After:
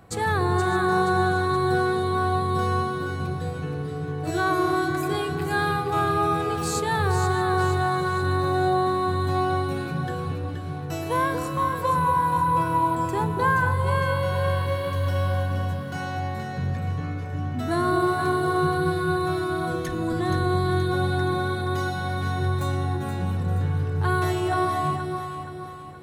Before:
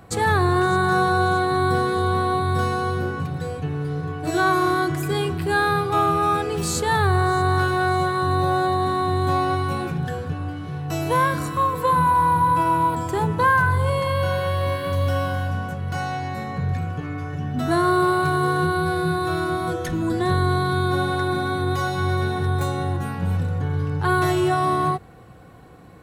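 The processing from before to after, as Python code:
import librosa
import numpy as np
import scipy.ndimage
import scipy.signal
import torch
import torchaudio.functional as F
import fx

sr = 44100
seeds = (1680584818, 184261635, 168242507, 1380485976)

y = fx.echo_alternate(x, sr, ms=237, hz=810.0, feedback_pct=67, wet_db=-3.5)
y = y * librosa.db_to_amplitude(-4.5)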